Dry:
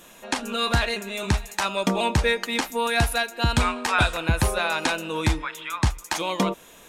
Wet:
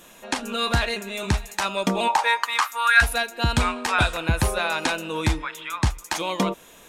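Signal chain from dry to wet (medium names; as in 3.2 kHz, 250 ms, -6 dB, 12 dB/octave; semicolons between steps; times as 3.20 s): 2.07–3.01 s: resonant high-pass 790 Hz -> 1.5 kHz, resonance Q 6.7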